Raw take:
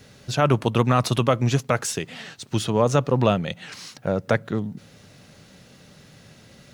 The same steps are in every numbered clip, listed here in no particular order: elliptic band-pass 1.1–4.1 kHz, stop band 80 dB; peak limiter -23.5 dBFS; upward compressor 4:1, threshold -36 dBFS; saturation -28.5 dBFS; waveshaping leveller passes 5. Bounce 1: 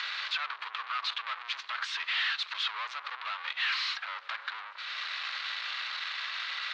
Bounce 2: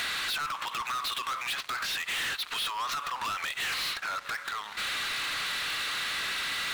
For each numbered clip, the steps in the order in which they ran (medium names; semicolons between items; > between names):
peak limiter > saturation > upward compressor > waveshaping leveller > elliptic band-pass; peak limiter > elliptic band-pass > upward compressor > saturation > waveshaping leveller